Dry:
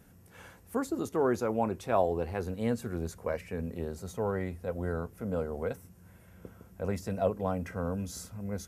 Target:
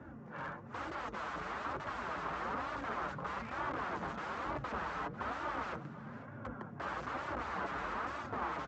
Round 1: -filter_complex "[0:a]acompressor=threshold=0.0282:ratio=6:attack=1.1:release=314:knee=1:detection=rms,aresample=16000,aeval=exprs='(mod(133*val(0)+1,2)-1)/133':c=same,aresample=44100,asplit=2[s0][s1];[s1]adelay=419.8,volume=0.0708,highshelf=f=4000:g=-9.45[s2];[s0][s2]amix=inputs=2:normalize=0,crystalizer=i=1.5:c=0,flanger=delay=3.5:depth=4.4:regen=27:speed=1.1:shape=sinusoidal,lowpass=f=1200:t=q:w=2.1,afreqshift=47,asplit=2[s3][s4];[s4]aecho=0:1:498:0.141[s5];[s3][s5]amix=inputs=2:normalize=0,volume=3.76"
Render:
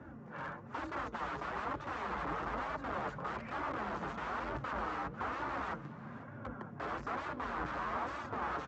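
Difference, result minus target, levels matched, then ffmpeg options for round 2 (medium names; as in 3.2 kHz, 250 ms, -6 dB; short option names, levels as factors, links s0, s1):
compression: peak gain reduction +6.5 dB
-filter_complex "[0:a]acompressor=threshold=0.0708:ratio=6:attack=1.1:release=314:knee=1:detection=rms,aresample=16000,aeval=exprs='(mod(133*val(0)+1,2)-1)/133':c=same,aresample=44100,asplit=2[s0][s1];[s1]adelay=419.8,volume=0.0708,highshelf=f=4000:g=-9.45[s2];[s0][s2]amix=inputs=2:normalize=0,crystalizer=i=1.5:c=0,flanger=delay=3.5:depth=4.4:regen=27:speed=1.1:shape=sinusoidal,lowpass=f=1200:t=q:w=2.1,afreqshift=47,asplit=2[s3][s4];[s4]aecho=0:1:498:0.141[s5];[s3][s5]amix=inputs=2:normalize=0,volume=3.76"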